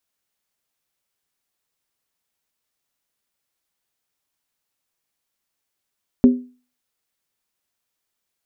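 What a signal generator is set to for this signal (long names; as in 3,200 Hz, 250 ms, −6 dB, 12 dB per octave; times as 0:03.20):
struck skin, lowest mode 249 Hz, decay 0.36 s, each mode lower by 11 dB, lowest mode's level −4.5 dB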